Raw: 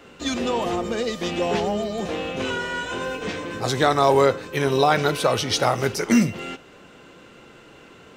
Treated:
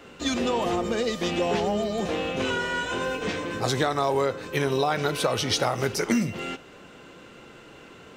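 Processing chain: compressor 6:1, threshold -20 dBFS, peak gain reduction 8 dB

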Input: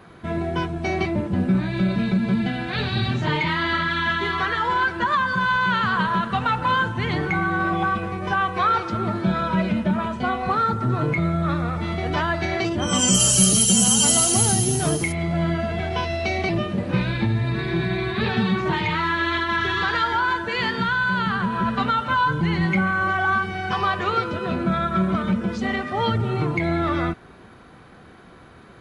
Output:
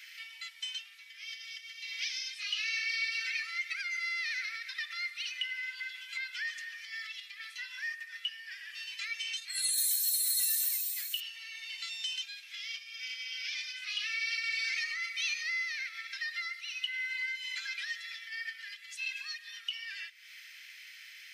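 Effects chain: compressor 3:1, threshold -38 dBFS, peak gain reduction 19 dB; steep high-pass 1500 Hz 36 dB/oct; speed mistake 33 rpm record played at 45 rpm; gain +5.5 dB

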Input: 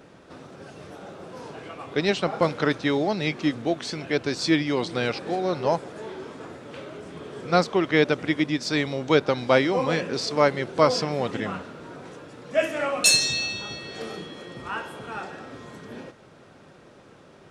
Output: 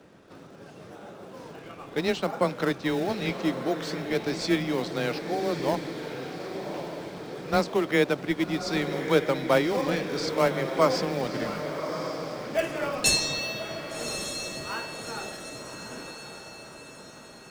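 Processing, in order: frequency shift +14 Hz; in parallel at -10.5 dB: decimation with a swept rate 25×, swing 160% 0.72 Hz; on the sum: diffused feedback echo 1.157 s, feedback 50%, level -8 dB; gain -5 dB

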